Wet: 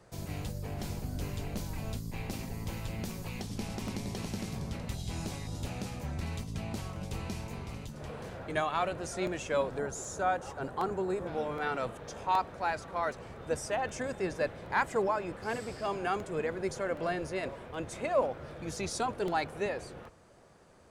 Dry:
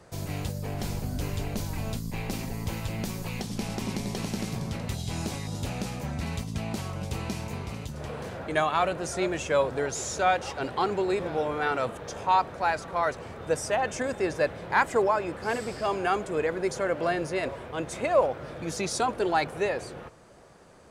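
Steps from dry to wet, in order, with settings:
sub-octave generator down 1 octave, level −5 dB
0:09.78–0:11.27: flat-topped bell 3,300 Hz −8.5 dB
regular buffer underruns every 0.77 s, samples 64, repeat, from 0:00.80
level −6 dB

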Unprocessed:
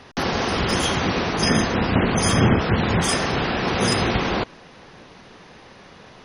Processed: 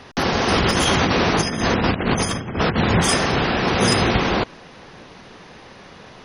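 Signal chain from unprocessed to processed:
0:00.48–0:02.76: compressor whose output falls as the input rises −22 dBFS, ratio −0.5
level +3 dB

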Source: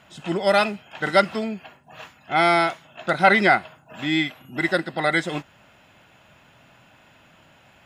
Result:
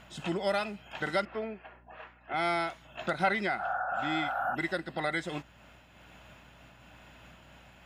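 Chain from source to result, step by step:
0:01.25–0:02.34: Chebyshev band-pass filter 340–2,000 Hz, order 2
0:03.62–0:04.52: healed spectral selection 530–1,800 Hz before
downward compressor 2 to 1, threshold −33 dBFS, peak gain reduction 12.5 dB
mains hum 60 Hz, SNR 26 dB
amplitude modulation by smooth noise, depth 50%

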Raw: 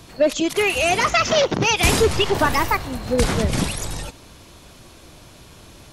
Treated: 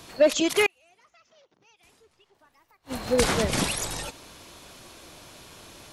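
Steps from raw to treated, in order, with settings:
low-shelf EQ 210 Hz −11 dB
0:00.66–0:03.07: gate with flip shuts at −17 dBFS, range −41 dB

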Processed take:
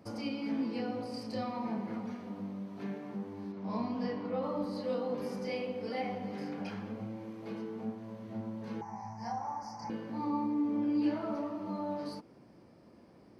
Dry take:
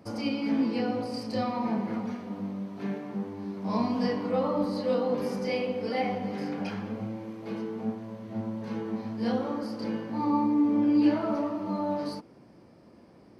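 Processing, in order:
0:08.81–0:09.90: drawn EQ curve 170 Hz 0 dB, 250 Hz −16 dB, 510 Hz −18 dB, 830 Hz +14 dB, 1,300 Hz −6 dB, 2,000 Hz −1 dB, 3,600 Hz −26 dB, 5,800 Hz +12 dB, 8,600 Hz −9 dB
in parallel at −1.5 dB: downward compressor, threshold −37 dBFS, peak gain reduction 17.5 dB
0:03.52–0:04.43: on the sum: high-frequency loss of the air 98 metres
level −9 dB

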